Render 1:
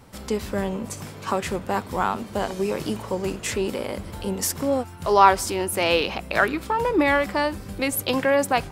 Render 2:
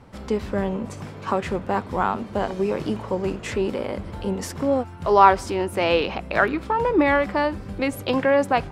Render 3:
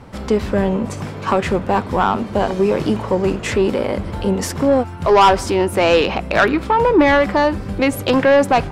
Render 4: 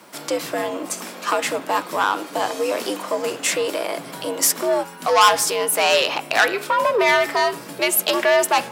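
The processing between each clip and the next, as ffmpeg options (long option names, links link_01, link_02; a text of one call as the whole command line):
ffmpeg -i in.wav -af "aemphasis=mode=reproduction:type=75fm,volume=1dB" out.wav
ffmpeg -i in.wav -af "asoftclip=type=tanh:threshold=-14dB,volume=8.5dB" out.wav
ffmpeg -i in.wav -af "aemphasis=mode=production:type=riaa,afreqshift=84,bandreject=frequency=138.5:width_type=h:width=4,bandreject=frequency=277:width_type=h:width=4,bandreject=frequency=415.5:width_type=h:width=4,bandreject=frequency=554:width_type=h:width=4,bandreject=frequency=692.5:width_type=h:width=4,bandreject=frequency=831:width_type=h:width=4,bandreject=frequency=969.5:width_type=h:width=4,bandreject=frequency=1108:width_type=h:width=4,bandreject=frequency=1246.5:width_type=h:width=4,bandreject=frequency=1385:width_type=h:width=4,bandreject=frequency=1523.5:width_type=h:width=4,bandreject=frequency=1662:width_type=h:width=4,bandreject=frequency=1800.5:width_type=h:width=4,bandreject=frequency=1939:width_type=h:width=4,bandreject=frequency=2077.5:width_type=h:width=4,bandreject=frequency=2216:width_type=h:width=4,bandreject=frequency=2354.5:width_type=h:width=4,bandreject=frequency=2493:width_type=h:width=4,bandreject=frequency=2631.5:width_type=h:width=4,bandreject=frequency=2770:width_type=h:width=4,bandreject=frequency=2908.5:width_type=h:width=4,bandreject=frequency=3047:width_type=h:width=4,bandreject=frequency=3185.5:width_type=h:width=4,bandreject=frequency=3324:width_type=h:width=4,bandreject=frequency=3462.5:width_type=h:width=4,bandreject=frequency=3601:width_type=h:width=4,bandreject=frequency=3739.5:width_type=h:width=4,bandreject=frequency=3878:width_type=h:width=4,volume=-2.5dB" out.wav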